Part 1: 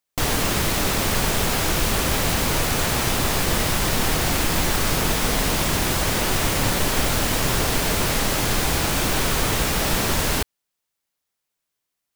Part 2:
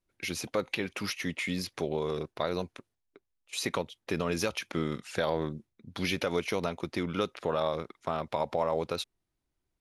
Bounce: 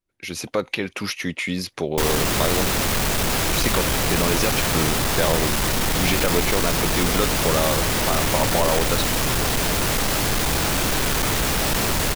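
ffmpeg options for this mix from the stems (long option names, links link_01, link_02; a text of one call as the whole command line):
ffmpeg -i stem1.wav -i stem2.wav -filter_complex "[0:a]asoftclip=type=tanh:threshold=-23.5dB,adelay=1800,volume=-3dB[link_01];[1:a]volume=-1.5dB[link_02];[link_01][link_02]amix=inputs=2:normalize=0,dynaudnorm=framelen=200:gausssize=3:maxgain=8.5dB" out.wav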